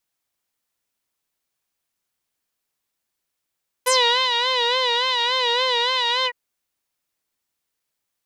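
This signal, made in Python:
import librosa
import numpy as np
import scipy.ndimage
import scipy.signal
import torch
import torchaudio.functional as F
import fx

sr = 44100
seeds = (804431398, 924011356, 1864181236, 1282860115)

y = fx.sub_patch_vibrato(sr, seeds[0], note=83, wave='saw', wave2='square', interval_st=-12, detune_cents=4, level2_db=-9.0, sub_db=-15.0, noise_db=-21.5, kind='lowpass', cutoff_hz=1600.0, q=5.6, env_oct=3.0, env_decay_s=0.11, env_sustain_pct=40, attack_ms=15.0, decay_s=0.45, sustain_db=-4.5, release_s=0.06, note_s=2.4, lfo_hz=3.5, vibrato_cents=88)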